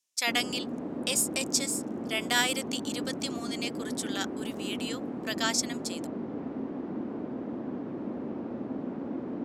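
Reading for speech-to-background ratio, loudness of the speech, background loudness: 5.5 dB, -31.0 LUFS, -36.5 LUFS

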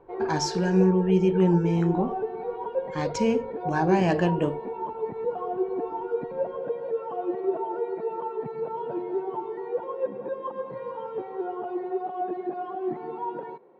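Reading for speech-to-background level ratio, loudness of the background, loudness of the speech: 7.0 dB, -31.5 LUFS, -24.5 LUFS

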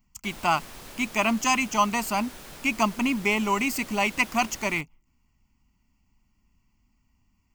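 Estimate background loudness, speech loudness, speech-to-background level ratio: -43.0 LUFS, -25.5 LUFS, 17.5 dB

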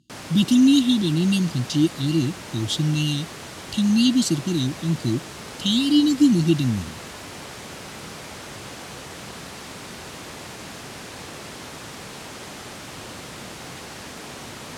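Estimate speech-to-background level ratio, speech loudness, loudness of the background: 15.5 dB, -21.0 LUFS, -36.5 LUFS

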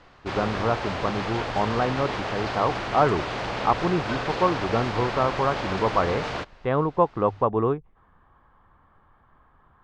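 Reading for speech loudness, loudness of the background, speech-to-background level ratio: -26.0 LUFS, -30.0 LUFS, 4.0 dB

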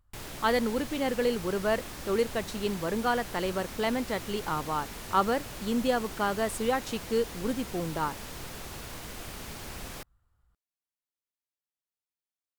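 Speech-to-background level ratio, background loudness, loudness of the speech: 10.0 dB, -40.5 LUFS, -30.5 LUFS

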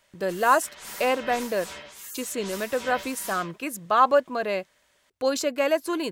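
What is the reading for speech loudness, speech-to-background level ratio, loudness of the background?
-25.5 LUFS, 13.0 dB, -38.5 LUFS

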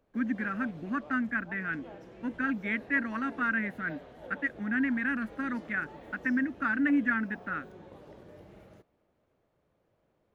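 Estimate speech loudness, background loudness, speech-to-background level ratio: -31.5 LUFS, -49.5 LUFS, 18.0 dB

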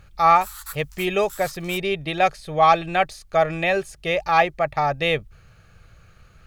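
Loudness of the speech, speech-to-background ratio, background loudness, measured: -21.5 LUFS, 18.0 dB, -39.5 LUFS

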